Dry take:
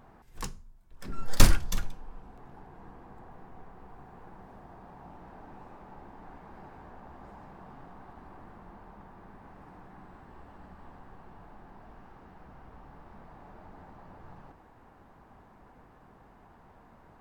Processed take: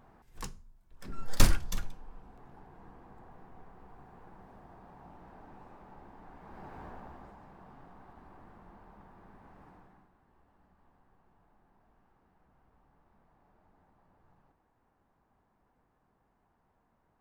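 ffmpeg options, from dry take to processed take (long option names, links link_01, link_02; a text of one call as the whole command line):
ffmpeg -i in.wav -af "volume=3dB,afade=type=in:start_time=6.35:duration=0.49:silence=0.446684,afade=type=out:start_time=6.84:duration=0.52:silence=0.398107,afade=type=out:start_time=9.67:duration=0.43:silence=0.251189" out.wav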